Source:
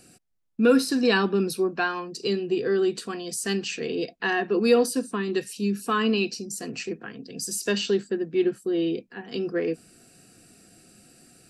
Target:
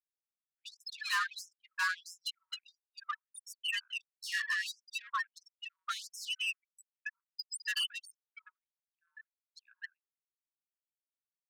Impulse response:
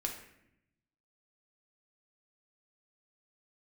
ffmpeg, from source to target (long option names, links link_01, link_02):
-filter_complex "[0:a]aecho=1:1:84.55|265.3:0.316|0.708,adynamicequalizer=threshold=0.0141:dfrequency=340:dqfactor=6.7:tfrequency=340:tqfactor=6.7:attack=5:release=100:ratio=0.375:range=3:mode=cutabove:tftype=bell,asplit=2[link_01][link_02];[link_02]adynamicsmooth=sensitivity=8:basefreq=2400,volume=0dB[link_03];[link_01][link_03]amix=inputs=2:normalize=0,afreqshift=63,afftfilt=real='re*gte(hypot(re,im),0.178)':imag='im*gte(hypot(re,im),0.178)':win_size=1024:overlap=0.75,acrossover=split=270[link_04][link_05];[link_05]acompressor=threshold=-17dB:ratio=4[link_06];[link_04][link_06]amix=inputs=2:normalize=0,acrossover=split=710[link_07][link_08];[link_08]asoftclip=type=tanh:threshold=-29dB[link_09];[link_07][link_09]amix=inputs=2:normalize=0,afftfilt=real='re*gte(b*sr/1024,920*pow(5300/920,0.5+0.5*sin(2*PI*1.5*pts/sr)))':imag='im*gte(b*sr/1024,920*pow(5300/920,0.5+0.5*sin(2*PI*1.5*pts/sr)))':win_size=1024:overlap=0.75"